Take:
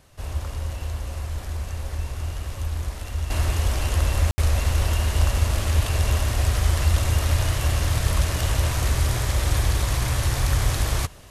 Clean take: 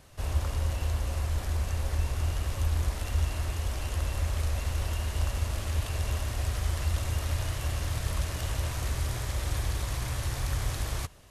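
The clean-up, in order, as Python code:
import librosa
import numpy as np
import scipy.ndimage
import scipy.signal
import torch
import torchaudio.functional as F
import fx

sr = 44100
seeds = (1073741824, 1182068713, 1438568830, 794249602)

y = fx.fix_ambience(x, sr, seeds[0], print_start_s=0.0, print_end_s=0.5, start_s=4.31, end_s=4.38)
y = fx.fix_level(y, sr, at_s=3.3, step_db=-9.0)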